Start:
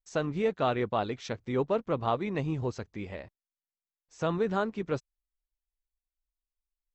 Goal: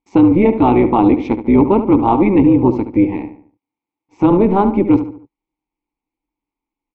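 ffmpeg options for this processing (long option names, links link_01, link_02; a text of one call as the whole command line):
ffmpeg -i in.wav -filter_complex "[0:a]asplit=3[link_01][link_02][link_03];[link_01]bandpass=frequency=300:width_type=q:width=8,volume=0dB[link_04];[link_02]bandpass=frequency=870:width_type=q:width=8,volume=-6dB[link_05];[link_03]bandpass=frequency=2240:width_type=q:width=8,volume=-9dB[link_06];[link_04][link_05][link_06]amix=inputs=3:normalize=0,tiltshelf=frequency=1500:gain=6.5,apsyclip=33dB,tremolo=f=190:d=0.519,asplit=2[link_07][link_08];[link_08]adelay=72,lowpass=frequency=2700:poles=1,volume=-10dB,asplit=2[link_09][link_10];[link_10]adelay=72,lowpass=frequency=2700:poles=1,volume=0.42,asplit=2[link_11][link_12];[link_12]adelay=72,lowpass=frequency=2700:poles=1,volume=0.42,asplit=2[link_13][link_14];[link_14]adelay=72,lowpass=frequency=2700:poles=1,volume=0.42[link_15];[link_09][link_11][link_13][link_15]amix=inputs=4:normalize=0[link_16];[link_07][link_16]amix=inputs=2:normalize=0,volume=-3dB" out.wav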